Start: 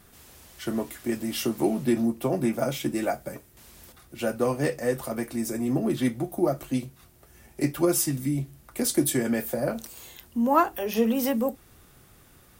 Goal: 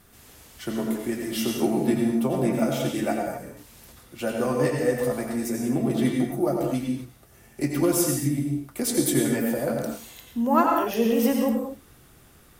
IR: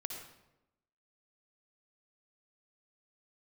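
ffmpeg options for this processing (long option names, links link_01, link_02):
-filter_complex "[1:a]atrim=start_sample=2205,afade=type=out:start_time=0.22:duration=0.01,atrim=end_sample=10143,asetrate=28665,aresample=44100[link_01];[0:a][link_01]afir=irnorm=-1:irlink=0"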